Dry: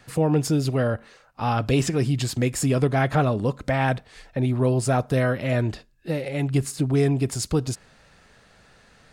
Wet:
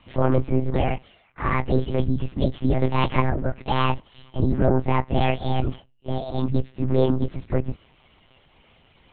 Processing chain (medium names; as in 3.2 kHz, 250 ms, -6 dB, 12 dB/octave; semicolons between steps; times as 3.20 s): frequency axis rescaled in octaves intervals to 128%; monotone LPC vocoder at 8 kHz 130 Hz; trim +3 dB